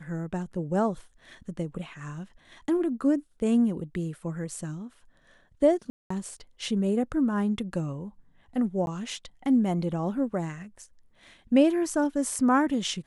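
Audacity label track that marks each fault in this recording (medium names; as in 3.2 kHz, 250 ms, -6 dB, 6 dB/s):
5.900000	6.100000	dropout 204 ms
8.860000	8.870000	dropout 11 ms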